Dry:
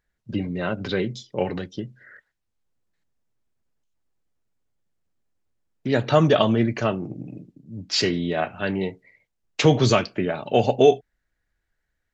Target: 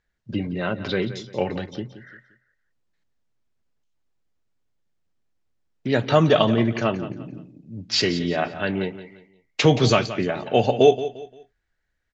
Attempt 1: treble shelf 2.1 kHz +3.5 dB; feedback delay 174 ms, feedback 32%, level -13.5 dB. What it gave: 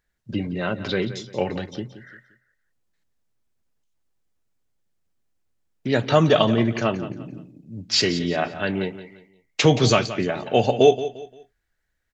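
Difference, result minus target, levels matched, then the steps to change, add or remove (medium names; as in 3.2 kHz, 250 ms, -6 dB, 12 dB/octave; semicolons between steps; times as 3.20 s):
8 kHz band +3.5 dB
add first: Bessel low-pass 5.8 kHz, order 4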